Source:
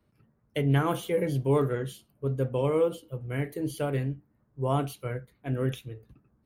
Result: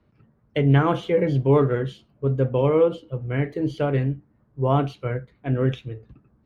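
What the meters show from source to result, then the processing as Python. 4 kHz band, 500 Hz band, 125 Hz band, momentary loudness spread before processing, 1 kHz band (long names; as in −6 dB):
+3.5 dB, +6.5 dB, +7.0 dB, 12 LU, +6.0 dB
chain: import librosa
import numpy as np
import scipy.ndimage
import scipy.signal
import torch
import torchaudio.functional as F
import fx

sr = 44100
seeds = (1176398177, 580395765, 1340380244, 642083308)

y = fx.air_absorb(x, sr, metres=170.0)
y = F.gain(torch.from_numpy(y), 7.0).numpy()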